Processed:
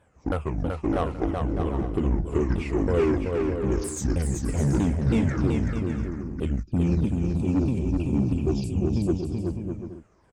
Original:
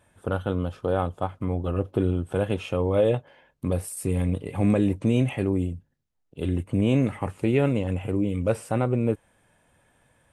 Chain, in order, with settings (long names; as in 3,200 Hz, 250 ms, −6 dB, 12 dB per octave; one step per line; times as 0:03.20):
pitch shifter swept by a sawtooth −10.5 semitones, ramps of 320 ms
gain on a spectral selection 0:06.63–0:09.44, 400–2,300 Hz −25 dB
harmonic generator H 5 −18 dB, 8 −22 dB, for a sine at −10.5 dBFS
bouncing-ball delay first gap 380 ms, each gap 0.6×, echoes 5
one half of a high-frequency compander decoder only
level −2.5 dB